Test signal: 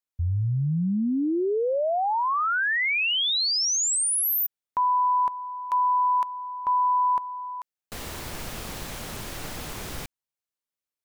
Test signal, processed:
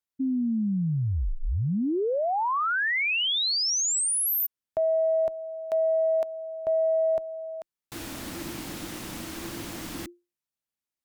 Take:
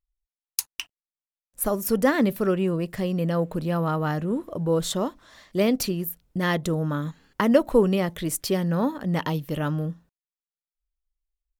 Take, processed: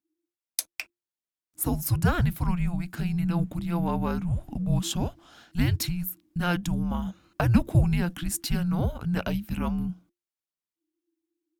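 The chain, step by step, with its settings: frequency shift -350 Hz; Chebyshev shaper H 5 -32 dB, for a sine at -4 dBFS; trim -2.5 dB

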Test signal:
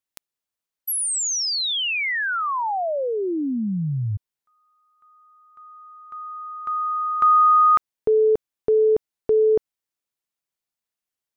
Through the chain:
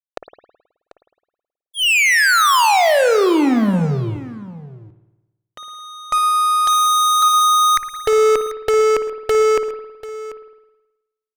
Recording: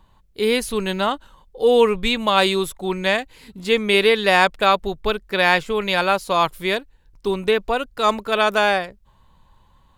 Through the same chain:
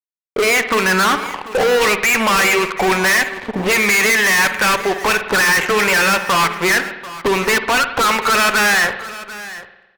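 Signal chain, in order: elliptic low-pass 2.8 kHz, stop band 80 dB; bass shelf 480 Hz +7 dB; in parallel at -2.5 dB: compression 6:1, threshold -29 dBFS; on the sum: auto-wah 560–2000 Hz, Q 3.4, up, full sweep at -12.5 dBFS; fuzz box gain 46 dB, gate -53 dBFS; on a send: delay 740 ms -16.5 dB; on the sum: spring tank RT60 1 s, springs 53 ms, chirp 40 ms, DRR 9 dB

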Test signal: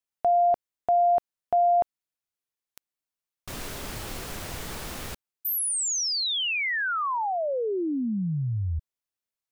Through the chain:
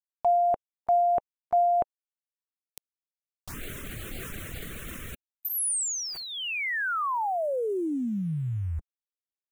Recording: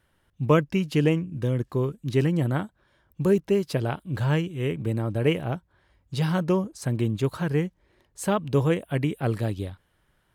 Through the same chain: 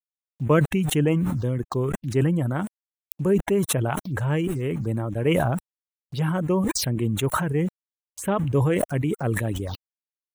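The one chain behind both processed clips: small samples zeroed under -44.5 dBFS; touch-sensitive phaser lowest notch 230 Hz, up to 4.8 kHz, full sweep at -25 dBFS; reverb removal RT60 0.7 s; decay stretcher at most 22 dB/s

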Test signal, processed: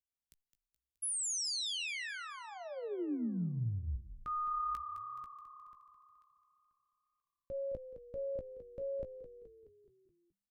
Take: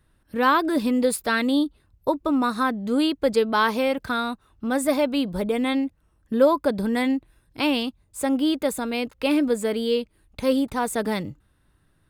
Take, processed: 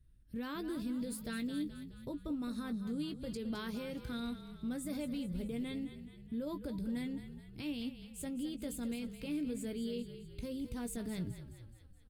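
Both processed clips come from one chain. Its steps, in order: amplifier tone stack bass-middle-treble 10-0-1; peak limiter -41 dBFS; doubling 17 ms -10 dB; on a send: frequency-shifting echo 212 ms, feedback 54%, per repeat -34 Hz, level -11 dB; on the sum: trim +7.5 dB

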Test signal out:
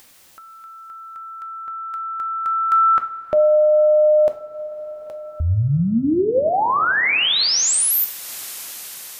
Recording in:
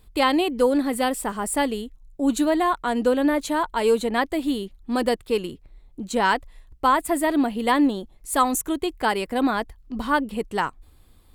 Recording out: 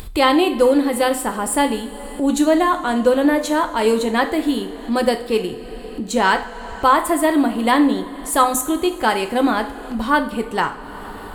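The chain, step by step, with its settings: two-slope reverb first 0.45 s, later 4 s, from -18 dB, DRR 6 dB; upward compressor, threshold -26 dBFS; trim +4 dB

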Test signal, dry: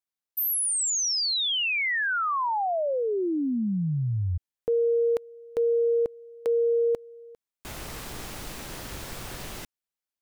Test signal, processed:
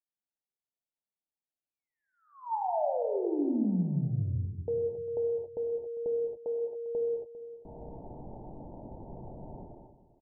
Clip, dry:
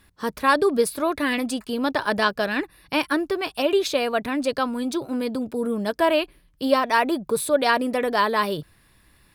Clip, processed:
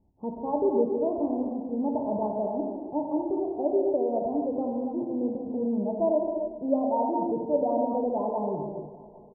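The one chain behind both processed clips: rippled Chebyshev low-pass 920 Hz, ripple 3 dB; on a send: feedback delay 400 ms, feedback 40%, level -16.5 dB; on the sum: gated-style reverb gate 310 ms flat, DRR -0.5 dB; trim -5 dB

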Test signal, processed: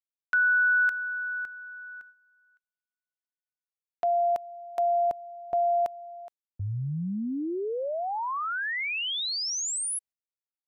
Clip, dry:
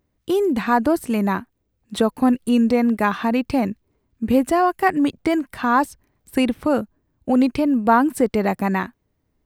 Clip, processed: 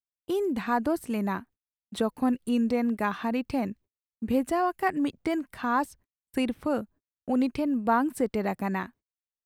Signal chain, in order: gate -42 dBFS, range -38 dB; trim -8.5 dB

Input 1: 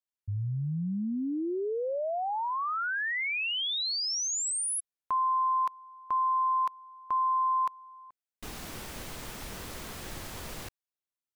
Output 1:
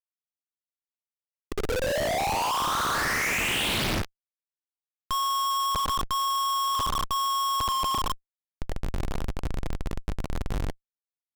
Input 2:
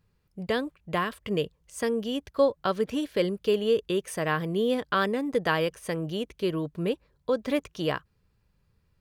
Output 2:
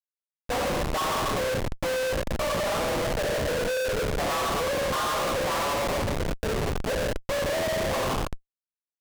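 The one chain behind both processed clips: low-pass that closes with the level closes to 1.8 kHz, closed at -26.5 dBFS; dynamic bell 1 kHz, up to +7 dB, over -43 dBFS, Q 1.9; band-stop 1.5 kHz, Q 6.3; word length cut 12-bit, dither none; mistuned SSB +54 Hz 490–3600 Hz; on a send: tape echo 83 ms, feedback 53%, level -6 dB, low-pass 1.5 kHz; on the sum: Schroeder reverb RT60 1.4 s, combs from 29 ms, DRR -2 dB; compressor with a negative ratio -19 dBFS, ratio -0.5; doubling 14 ms -7 dB; Schmitt trigger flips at -29 dBFS; loudspeaker Doppler distortion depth 0.82 ms; trim -1 dB

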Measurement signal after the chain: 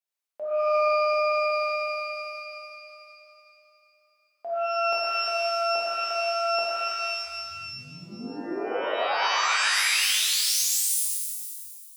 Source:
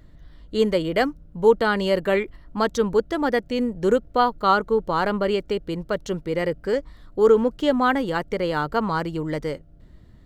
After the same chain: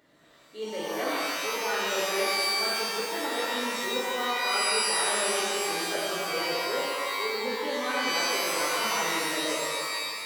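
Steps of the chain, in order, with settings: reverse; compression 6:1, threshold -30 dBFS; reverse; high-pass 410 Hz 12 dB/octave; pitch-shifted reverb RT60 2 s, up +12 st, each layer -2 dB, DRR -7.5 dB; trim -4 dB

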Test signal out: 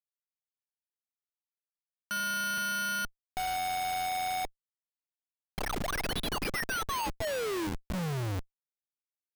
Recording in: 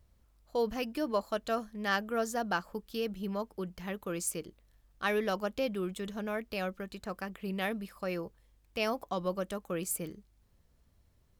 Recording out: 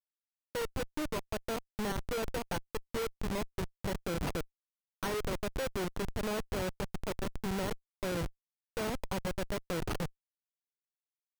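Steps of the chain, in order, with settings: low-pass 8.5 kHz 12 dB/octave; comb 2.1 ms, depth 52%; dynamic bell 960 Hz, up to +4 dB, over -51 dBFS, Q 5.2; compression 5:1, threshold -36 dBFS; careless resampling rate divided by 6×, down none, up zero stuff; two-band feedback delay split 1.1 kHz, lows 153 ms, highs 512 ms, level -9 dB; Schmitt trigger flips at -21.5 dBFS

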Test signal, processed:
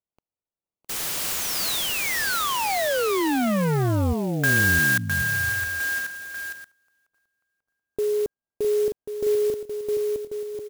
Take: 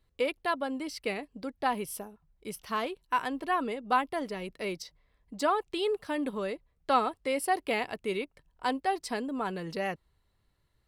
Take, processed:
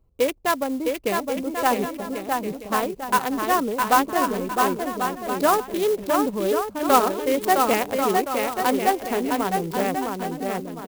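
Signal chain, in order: local Wiener filter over 25 samples; on a send: bouncing-ball echo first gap 660 ms, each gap 0.65×, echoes 5; on the sum: sampling jitter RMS 0.04 ms; trim +8.5 dB

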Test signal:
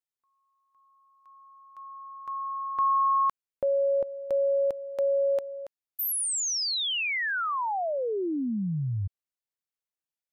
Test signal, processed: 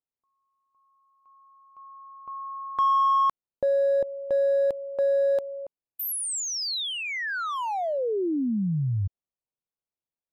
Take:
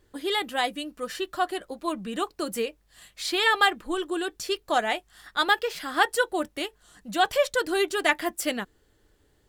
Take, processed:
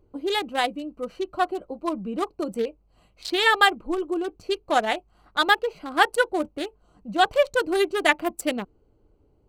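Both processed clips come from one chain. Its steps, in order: local Wiener filter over 25 samples; trim +3.5 dB

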